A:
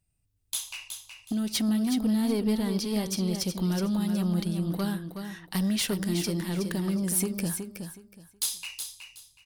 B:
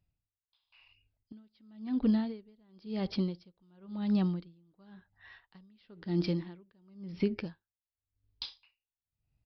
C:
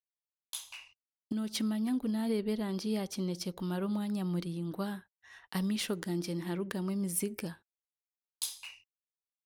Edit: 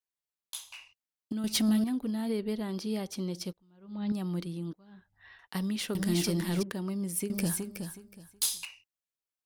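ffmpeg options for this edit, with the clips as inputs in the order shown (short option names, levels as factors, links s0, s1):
-filter_complex "[0:a]asplit=3[s0][s1][s2];[1:a]asplit=2[s3][s4];[2:a]asplit=6[s5][s6][s7][s8][s9][s10];[s5]atrim=end=1.442[s11];[s0]atrim=start=1.438:end=1.842[s12];[s6]atrim=start=1.838:end=3.532[s13];[s3]atrim=start=3.528:end=4.122[s14];[s7]atrim=start=4.118:end=4.732[s15];[s4]atrim=start=4.728:end=5.392[s16];[s8]atrim=start=5.388:end=5.952[s17];[s1]atrim=start=5.948:end=6.632[s18];[s9]atrim=start=6.628:end=7.302[s19];[s2]atrim=start=7.298:end=8.652[s20];[s10]atrim=start=8.648[s21];[s11][s12]acrossfade=d=0.004:c1=hsin:c2=hsin[s22];[s22][s13]acrossfade=d=0.004:c1=hsin:c2=hsin[s23];[s23][s14]acrossfade=d=0.004:c1=hsin:c2=hsin[s24];[s24][s15]acrossfade=d=0.004:c1=hsin:c2=hsin[s25];[s25][s16]acrossfade=d=0.004:c1=hsin:c2=hsin[s26];[s26][s17]acrossfade=d=0.004:c1=hsin:c2=hsin[s27];[s27][s18]acrossfade=d=0.004:c1=hsin:c2=hsin[s28];[s28][s19]acrossfade=d=0.004:c1=hsin:c2=hsin[s29];[s29][s20]acrossfade=d=0.004:c1=hsin:c2=hsin[s30];[s30][s21]acrossfade=d=0.004:c1=hsin:c2=hsin"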